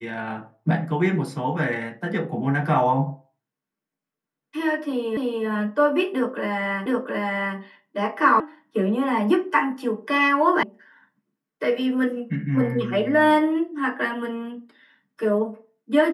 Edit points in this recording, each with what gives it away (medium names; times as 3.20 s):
5.17 s: repeat of the last 0.29 s
6.86 s: repeat of the last 0.72 s
8.40 s: sound stops dead
10.63 s: sound stops dead